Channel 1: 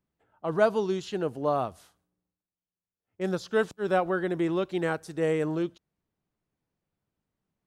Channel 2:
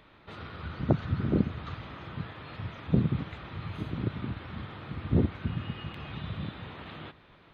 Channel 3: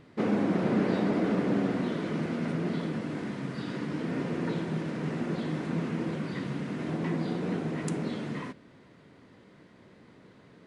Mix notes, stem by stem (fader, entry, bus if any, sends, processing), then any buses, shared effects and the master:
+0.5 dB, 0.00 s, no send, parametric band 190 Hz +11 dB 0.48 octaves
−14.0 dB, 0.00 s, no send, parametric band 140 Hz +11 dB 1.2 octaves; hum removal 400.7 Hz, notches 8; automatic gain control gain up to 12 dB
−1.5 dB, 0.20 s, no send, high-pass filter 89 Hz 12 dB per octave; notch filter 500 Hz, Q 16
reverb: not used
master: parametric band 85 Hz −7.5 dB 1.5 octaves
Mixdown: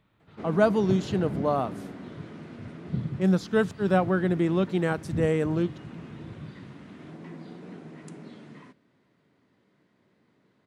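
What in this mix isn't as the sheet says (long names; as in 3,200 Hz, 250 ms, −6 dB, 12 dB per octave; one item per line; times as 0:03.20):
stem 2: missing automatic gain control gain up to 12 dB
stem 3 −1.5 dB → −11.5 dB
master: missing parametric band 85 Hz −7.5 dB 1.5 octaves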